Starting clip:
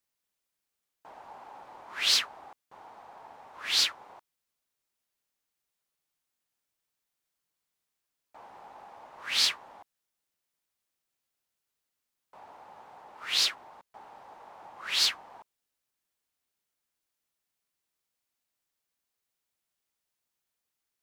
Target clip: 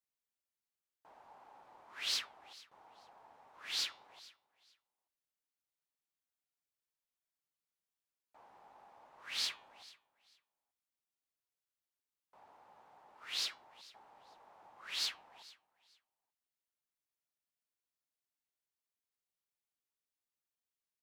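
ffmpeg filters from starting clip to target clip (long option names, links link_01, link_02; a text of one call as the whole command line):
ffmpeg -i in.wav -af "flanger=delay=6.2:depth=3.1:regen=-87:speed=1.4:shape=sinusoidal,aecho=1:1:442|884:0.0891|0.0196,volume=-7dB" out.wav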